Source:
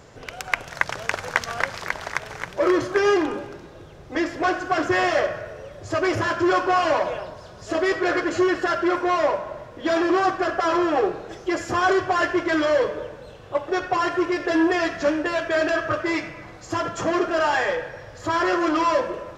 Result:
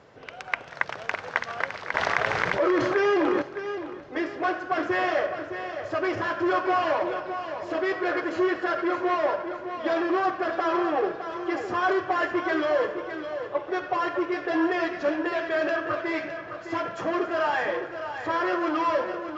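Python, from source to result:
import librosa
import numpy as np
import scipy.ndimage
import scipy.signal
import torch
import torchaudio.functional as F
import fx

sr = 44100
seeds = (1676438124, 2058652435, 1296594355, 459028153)

y = fx.highpass(x, sr, hz=240.0, slope=6)
y = fx.air_absorb(y, sr, metres=170.0)
y = fx.echo_feedback(y, sr, ms=611, feedback_pct=34, wet_db=-9)
y = fx.env_flatten(y, sr, amount_pct=70, at=(1.94, 3.42))
y = y * 10.0 ** (-3.0 / 20.0)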